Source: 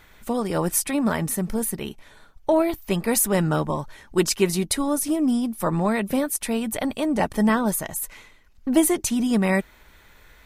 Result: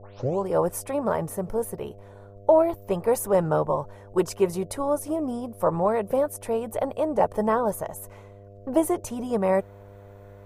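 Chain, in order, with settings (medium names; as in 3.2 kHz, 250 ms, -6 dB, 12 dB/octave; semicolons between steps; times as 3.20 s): tape start-up on the opening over 0.47 s; treble shelf 10 kHz -7 dB; mains buzz 100 Hz, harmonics 7, -44 dBFS -6 dB/octave; ten-band graphic EQ 125 Hz +3 dB, 250 Hz -8 dB, 500 Hz +11 dB, 1 kHz +6 dB, 2 kHz -6 dB, 4 kHz -9 dB, 8 kHz -3 dB; trim -5 dB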